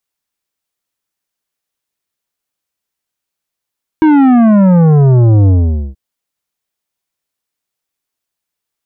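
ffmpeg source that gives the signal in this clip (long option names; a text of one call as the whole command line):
ffmpeg -f lavfi -i "aevalsrc='0.531*clip((1.93-t)/0.47,0,1)*tanh(3.55*sin(2*PI*320*1.93/log(65/320)*(exp(log(65/320)*t/1.93)-1)))/tanh(3.55)':duration=1.93:sample_rate=44100" out.wav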